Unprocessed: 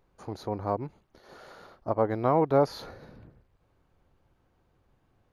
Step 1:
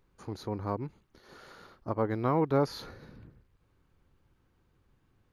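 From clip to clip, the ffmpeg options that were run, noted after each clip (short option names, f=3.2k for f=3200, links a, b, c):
-af "equalizer=f=670:t=o:w=0.86:g=-9"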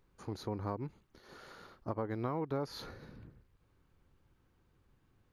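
-af "acompressor=threshold=-31dB:ratio=6,volume=-1.5dB"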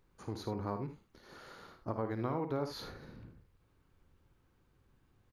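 -af "aecho=1:1:54|78:0.316|0.282"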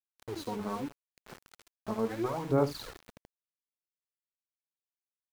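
-af "bandreject=f=50:t=h:w=6,bandreject=f=100:t=h:w=6,bandreject=f=150:t=h:w=6,bandreject=f=200:t=h:w=6,bandreject=f=250:t=h:w=6,bandreject=f=300:t=h:w=6,aphaser=in_gain=1:out_gain=1:delay=4.7:decay=0.71:speed=0.77:type=sinusoidal,aeval=exprs='val(0)*gte(abs(val(0)),0.00794)':c=same"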